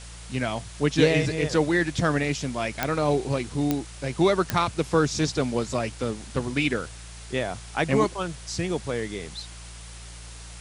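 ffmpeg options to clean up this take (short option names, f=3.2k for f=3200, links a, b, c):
-af "adeclick=t=4,bandreject=f=57.5:t=h:w=4,bandreject=f=115:t=h:w=4,bandreject=f=172.5:t=h:w=4,afwtdn=0.0071"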